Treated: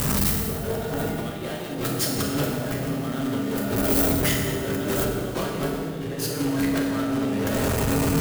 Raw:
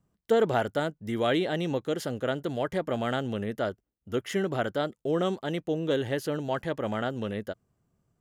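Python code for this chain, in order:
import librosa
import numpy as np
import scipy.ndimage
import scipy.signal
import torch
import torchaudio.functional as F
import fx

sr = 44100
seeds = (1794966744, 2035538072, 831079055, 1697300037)

y = x + 0.5 * 10.0 ** (-26.5 / 20.0) * np.sign(x)
y = fx.peak_eq(y, sr, hz=770.0, db=-3.5, octaves=0.32)
y = fx.doubler(y, sr, ms=25.0, db=-6)
y = fx.echo_filtered(y, sr, ms=185, feedback_pct=66, hz=3600.0, wet_db=-8)
y = fx.over_compress(y, sr, threshold_db=-30.0, ratio=-0.5)
y = fx.rev_fdn(y, sr, rt60_s=1.5, lf_ratio=1.55, hf_ratio=0.8, size_ms=22.0, drr_db=-1.5)
y = fx.leveller(y, sr, passes=2)
y = fx.high_shelf(y, sr, hz=9800.0, db=fx.steps((0.0, 10.5), (5.03, 3.5)))
y = fx.transformer_sat(y, sr, knee_hz=210.0)
y = F.gain(torch.from_numpy(y), -5.5).numpy()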